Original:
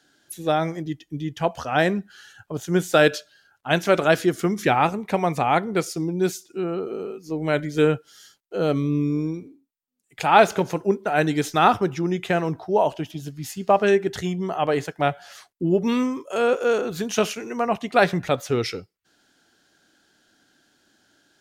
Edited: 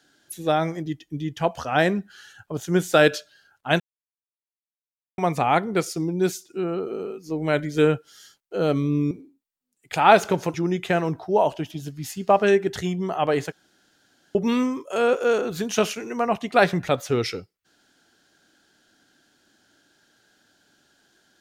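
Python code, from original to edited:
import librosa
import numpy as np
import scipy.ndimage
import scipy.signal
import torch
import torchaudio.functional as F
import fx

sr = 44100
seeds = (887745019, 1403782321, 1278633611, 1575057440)

y = fx.edit(x, sr, fx.silence(start_s=3.8, length_s=1.38),
    fx.cut(start_s=9.11, length_s=0.27),
    fx.cut(start_s=10.81, length_s=1.13),
    fx.room_tone_fill(start_s=14.92, length_s=0.83), tone=tone)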